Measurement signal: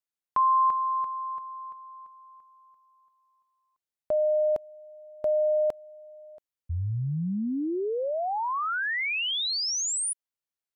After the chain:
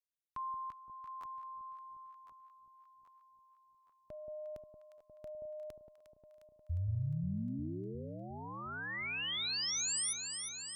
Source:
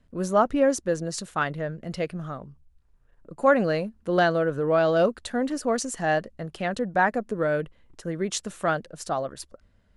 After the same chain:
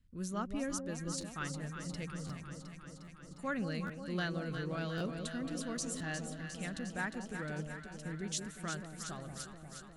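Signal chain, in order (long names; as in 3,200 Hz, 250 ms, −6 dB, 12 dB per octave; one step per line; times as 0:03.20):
guitar amp tone stack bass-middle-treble 6-0-2
on a send: delay that swaps between a low-pass and a high-pass 178 ms, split 870 Hz, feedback 84%, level −6 dB
on the sum: buffer that repeats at 0:01.20/0:02.26/0:03.04/0:03.86/0:04.97/0:05.97, samples 512, times 2
level +7 dB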